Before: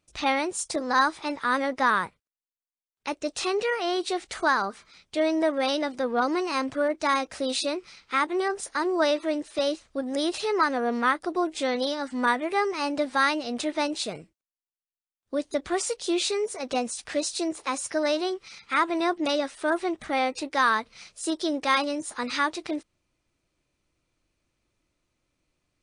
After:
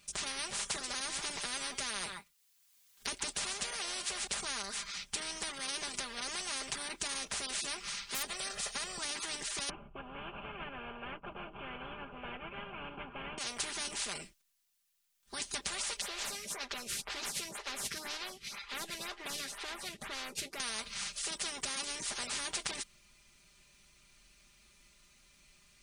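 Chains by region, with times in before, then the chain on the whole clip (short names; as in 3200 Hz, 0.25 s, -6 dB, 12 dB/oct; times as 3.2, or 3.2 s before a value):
0.52–4.27 echo 0.134 s -23 dB + three-band squash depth 40%
8.14–8.98 hard clip -14 dBFS + comb 1.6 ms, depth 92%
9.69–13.38 CVSD 16 kbps + running mean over 23 samples + tilt -4 dB/oct
16.01–20.6 CVSD 64 kbps + LPF 1700 Hz 6 dB/oct + photocell phaser 2 Hz
whole clip: passive tone stack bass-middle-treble 5-5-5; comb 5 ms, depth 92%; spectral compressor 10:1; gain +1 dB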